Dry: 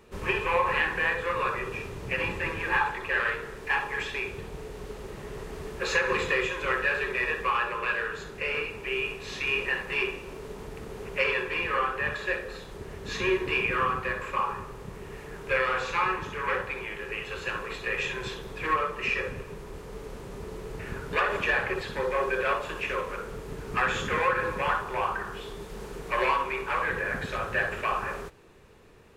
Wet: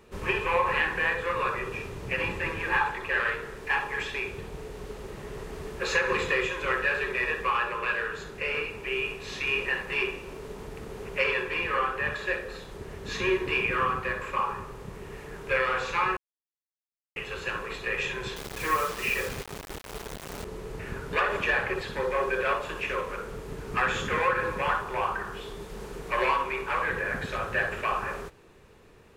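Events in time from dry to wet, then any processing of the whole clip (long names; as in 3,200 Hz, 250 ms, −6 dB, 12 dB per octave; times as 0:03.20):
0:16.17–0:17.16: silence
0:18.36–0:20.45: bit-depth reduction 6 bits, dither none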